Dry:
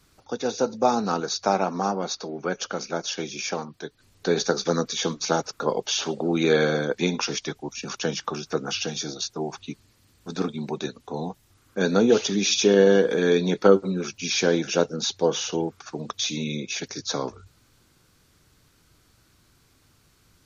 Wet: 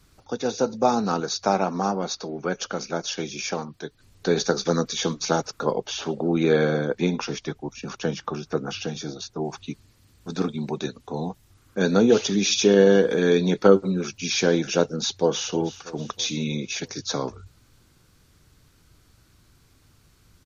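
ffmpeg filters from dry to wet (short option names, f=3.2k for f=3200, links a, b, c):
-filter_complex "[0:a]asettb=1/sr,asplit=3[a][b][c];[a]atrim=end=5.714[d];[b]atrim=start=5.71:end=9.45,asetpts=PTS-STARTPTS,afade=t=in:d=0.004:c=qsin,afade=t=out:st=3.736:d=0.004:c=qsin,highshelf=f=2.7k:g=-8.5[e];[c]atrim=start=9.446[f];[d][e]acrossfade=d=0.004:c1=hsin:c2=qsin[g];[g][f]acrossfade=d=0.004:c1=qsin:c2=hsin,asplit=2[h][i];[i]afade=t=in:st=14.91:d=0.01,afade=t=out:st=15.52:d=0.01,aecho=0:1:320|640|960|1280|1600:0.16788|0.0923342|0.0507838|0.0279311|0.0153621[j];[h][j]amix=inputs=2:normalize=0,lowshelf=f=140:g=7"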